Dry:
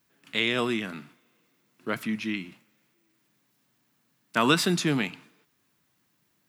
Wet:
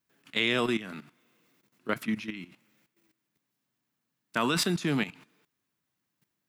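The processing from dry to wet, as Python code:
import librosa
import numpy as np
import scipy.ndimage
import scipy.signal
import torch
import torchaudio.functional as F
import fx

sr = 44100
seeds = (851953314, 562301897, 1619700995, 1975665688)

y = fx.level_steps(x, sr, step_db=14)
y = y * 10.0 ** (1.5 / 20.0)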